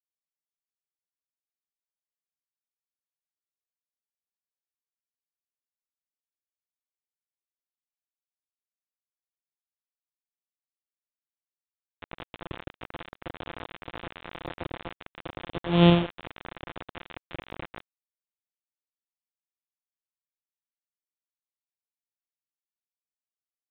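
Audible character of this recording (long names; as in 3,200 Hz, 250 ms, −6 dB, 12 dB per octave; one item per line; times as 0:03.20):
a buzz of ramps at a fixed pitch in blocks of 256 samples
phaser sweep stages 8, 0.088 Hz, lowest notch 800–2,000 Hz
a quantiser's noise floor 6 bits, dither none
mu-law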